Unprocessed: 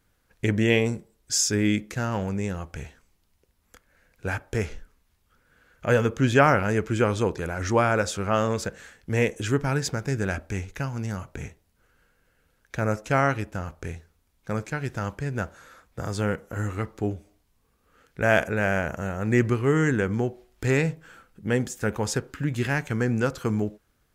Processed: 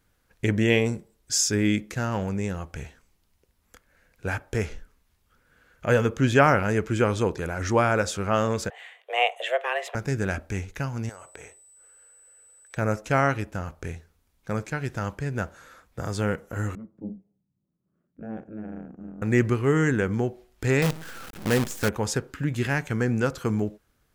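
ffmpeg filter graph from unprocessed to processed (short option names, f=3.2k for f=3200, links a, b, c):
-filter_complex "[0:a]asettb=1/sr,asplit=3[a][b][c];[a]atrim=end=8.704[d];[b]atrim=start=8.7:end=9.95,asetpts=PTS-STARTPTS,afade=t=in:d=0.004:c=qsin,afade=t=out:st=1.246:d=0.004:c=qsin,highpass=f=230:w=0.5412,highpass=f=230:w=1.3066,highshelf=f=3.8k:t=q:w=3:g=-9,afreqshift=250[e];[c]atrim=start=9.946[f];[d][e]acrossfade=d=0.004:c1=hsin:c2=qsin[g];[g][f]acrossfade=d=0.004:c1=qsin:c2=hsin,asettb=1/sr,asplit=3[h][i][j];[h]atrim=end=11.094[k];[i]atrim=start=11.09:end=12.77,asetpts=PTS-STARTPTS,afade=t=in:d=0.004:c=qsin,afade=t=out:st=1.676:d=0.004:c=qsin,lowshelf=f=310:t=q:w=1.5:g=-14,acompressor=threshold=-39dB:ratio=6:attack=3.2:release=140:knee=1:detection=peak,aeval=exprs='val(0)+0.00251*sin(2*PI*8000*n/s)':c=same[l];[j]atrim=start=12.766[m];[k][l]acrossfade=d=0.004:c1=hsin:c2=qsin[n];[n][m]acrossfade=d=0.004:c1=qsin:c2=hsin,asettb=1/sr,asplit=3[o][p][q];[o]atrim=end=16.754[r];[p]atrim=start=16.75:end=19.22,asetpts=PTS-STARTPTS,afade=t=in:d=0.004:c=qsin,afade=t=out:st=2.466:d=0.004:c=qsin,aeval=exprs='val(0)*sin(2*PI*110*n/s)':c=same,bandpass=f=200:t=q:w=2.4[s];[q]atrim=start=19.216[t];[r][s]acrossfade=d=0.004:c1=hsin:c2=qsin[u];[u][t]acrossfade=d=0.004:c1=qsin:c2=hsin,asettb=1/sr,asplit=3[v][w][x];[v]atrim=end=20.824[y];[w]atrim=start=20.82:end=21.89,asetpts=PTS-STARTPTS,afade=t=in:d=0.004:c=qsin,afade=t=out:st=1.066:d=0.004:c=qsin,aeval=exprs='val(0)+0.5*0.0251*sgn(val(0))':c=same,highpass=41,acrusher=bits=5:dc=4:mix=0:aa=0.000001[z];[x]atrim=start=21.886[aa];[y][z]acrossfade=d=0.004:c1=hsin:c2=qsin[ab];[ab][aa]acrossfade=d=0.004:c1=qsin:c2=hsin"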